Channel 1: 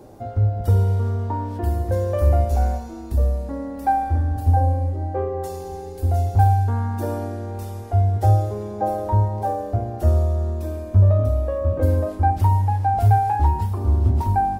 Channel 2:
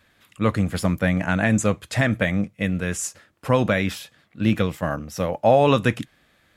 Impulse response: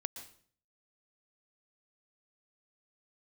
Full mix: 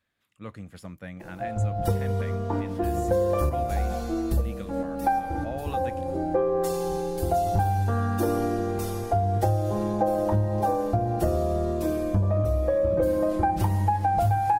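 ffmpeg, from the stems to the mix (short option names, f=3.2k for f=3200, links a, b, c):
-filter_complex "[0:a]aecho=1:1:5.9:0.93,adelay=1200,volume=1dB,asplit=2[a][b];[b]volume=-7dB[c];[1:a]volume=-19dB,asplit=2[d][e];[e]apad=whole_len=696675[f];[a][f]sidechaincompress=threshold=-49dB:ratio=8:attack=8.4:release=157[g];[2:a]atrim=start_sample=2205[h];[c][h]afir=irnorm=-1:irlink=0[i];[g][d][i]amix=inputs=3:normalize=0,acompressor=threshold=-20dB:ratio=6"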